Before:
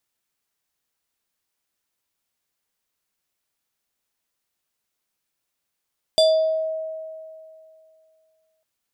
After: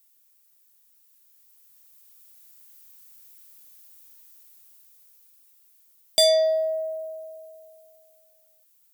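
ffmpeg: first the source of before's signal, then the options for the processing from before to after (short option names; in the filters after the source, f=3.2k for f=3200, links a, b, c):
-f lavfi -i "aevalsrc='0.266*pow(10,-3*t/2.53)*sin(2*PI*637*t+1*pow(10,-3*t/0.6)*sin(2*PI*6.48*637*t))':d=2.45:s=44100"
-af "aemphasis=mode=production:type=75fm,dynaudnorm=f=560:g=7:m=11dB,asoftclip=type=tanh:threshold=-13.5dB"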